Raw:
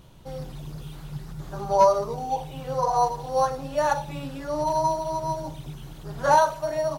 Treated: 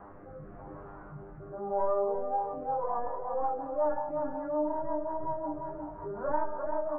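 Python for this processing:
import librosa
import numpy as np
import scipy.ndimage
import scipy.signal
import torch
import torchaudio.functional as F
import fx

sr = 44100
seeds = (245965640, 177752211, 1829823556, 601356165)

y = fx.tracing_dist(x, sr, depth_ms=0.22)
y = fx.peak_eq(y, sr, hz=130.0, db=-7.0, octaves=1.5)
y = fx.echo_thinned(y, sr, ms=590, feedback_pct=75, hz=560.0, wet_db=-22)
y = fx.noise_reduce_blind(y, sr, reduce_db=13)
y = fx.quant_float(y, sr, bits=2)
y = fx.rider(y, sr, range_db=4, speed_s=0.5)
y = fx.quant_dither(y, sr, seeds[0], bits=8, dither='triangular')
y = scipy.signal.sosfilt(scipy.signal.butter(6, 1300.0, 'lowpass', fs=sr, output='sos'), y)
y = fx.comb_fb(y, sr, f0_hz=100.0, decay_s=0.34, harmonics='all', damping=0.0, mix_pct=90)
y = y + 10.0 ** (-9.0 / 20.0) * np.pad(y, (int(348 * sr / 1000.0), 0))[:len(y)]
y = fx.rotary_switch(y, sr, hz=0.9, then_hz=5.5, switch_at_s=1.98)
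y = fx.env_flatten(y, sr, amount_pct=50)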